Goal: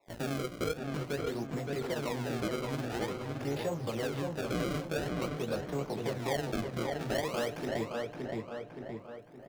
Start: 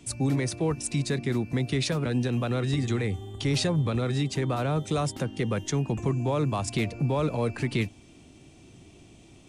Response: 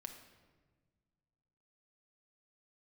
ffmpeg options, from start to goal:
-filter_complex "[0:a]highpass=110,equalizer=f=630:t=o:w=1.7:g=14.5,acrossover=split=600|900[a][b][c];[a]acrusher=bits=5:mix=0:aa=0.000001[d];[d][b][c]amix=inputs=3:normalize=0,flanger=delay=16.5:depth=5.1:speed=1.3,asplit=2[e][f];[1:a]atrim=start_sample=2205[g];[f][g]afir=irnorm=-1:irlink=0,volume=-8.5dB[h];[e][h]amix=inputs=2:normalize=0,adynamicsmooth=sensitivity=6.5:basefreq=530,acrusher=samples=28:mix=1:aa=0.000001:lfo=1:lforange=44.8:lforate=0.48,asplit=2[i][j];[j]adelay=569,lowpass=f=2.7k:p=1,volume=-4.5dB,asplit=2[k][l];[l]adelay=569,lowpass=f=2.7k:p=1,volume=0.38,asplit=2[m][n];[n]adelay=569,lowpass=f=2.7k:p=1,volume=0.38,asplit=2[o][p];[p]adelay=569,lowpass=f=2.7k:p=1,volume=0.38,asplit=2[q][r];[r]adelay=569,lowpass=f=2.7k:p=1,volume=0.38[s];[i][k][m][o][q][s]amix=inputs=6:normalize=0,acompressor=threshold=-34dB:ratio=2,adynamicequalizer=threshold=0.002:dfrequency=7500:dqfactor=0.7:tfrequency=7500:tqfactor=0.7:attack=5:release=100:ratio=0.375:range=2.5:mode=cutabove:tftype=highshelf,volume=-4.5dB"

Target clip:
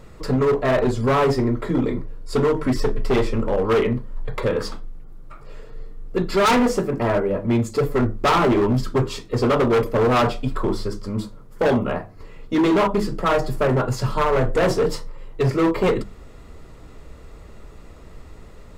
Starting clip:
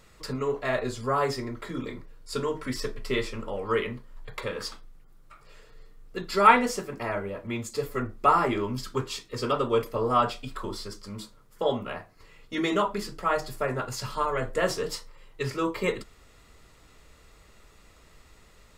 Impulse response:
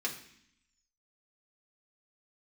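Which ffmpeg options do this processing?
-filter_complex "[0:a]tiltshelf=f=1.1k:g=7.5,bandreject=f=50:t=h:w=6,bandreject=f=100:t=h:w=6,bandreject=f=150:t=h:w=6,bandreject=f=200:t=h:w=6,asplit=2[a][b];[b]acontrast=57,volume=1.5dB[c];[a][c]amix=inputs=2:normalize=0,asoftclip=type=hard:threshold=-12dB,volume=-2.5dB"

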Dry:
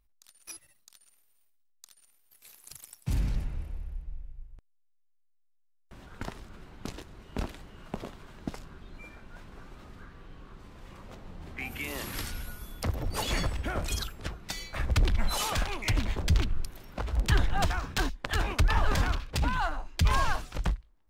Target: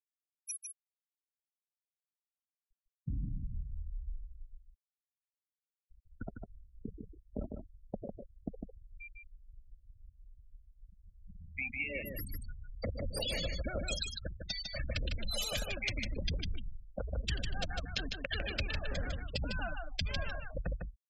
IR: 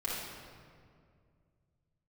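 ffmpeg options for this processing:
-filter_complex "[0:a]afftfilt=real='re*gte(hypot(re,im),0.0398)':imag='im*gte(hypot(re,im),0.0398)':win_size=1024:overlap=0.75,firequalizer=gain_entry='entry(140,0);entry(210,3);entry(380,-2);entry(540,11);entry(940,-16);entry(1500,1);entry(2600,10)':delay=0.05:min_phase=1,acompressor=threshold=-28dB:ratio=12,asplit=2[a][b];[b]aecho=0:1:152:0.562[c];[a][c]amix=inputs=2:normalize=0,volume=-4.5dB"

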